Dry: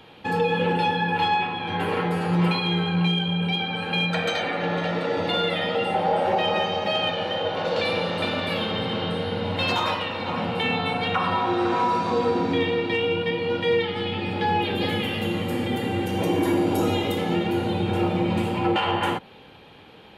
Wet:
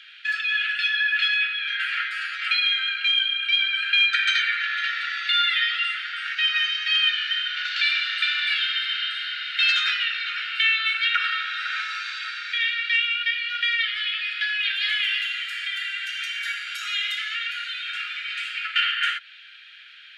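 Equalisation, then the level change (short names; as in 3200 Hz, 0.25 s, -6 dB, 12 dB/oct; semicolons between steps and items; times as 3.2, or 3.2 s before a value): steep high-pass 1400 Hz 96 dB/oct; air absorption 130 m; high shelf 11000 Hz +10.5 dB; +9.0 dB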